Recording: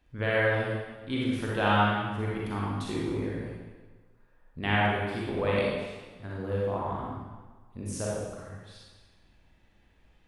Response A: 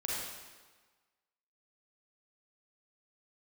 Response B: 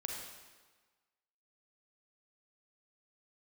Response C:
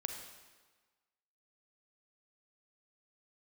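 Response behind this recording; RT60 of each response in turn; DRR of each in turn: A; 1.4, 1.4, 1.4 seconds; −5.5, 0.0, 4.0 decibels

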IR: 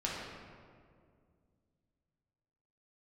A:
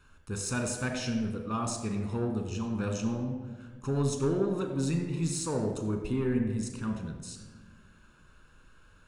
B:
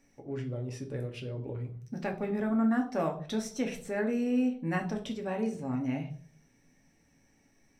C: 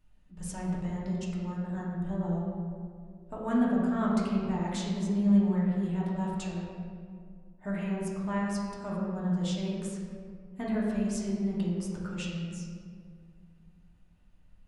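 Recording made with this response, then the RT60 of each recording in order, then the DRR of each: C; 1.4, 0.45, 2.1 seconds; 4.0, 1.5, −5.5 decibels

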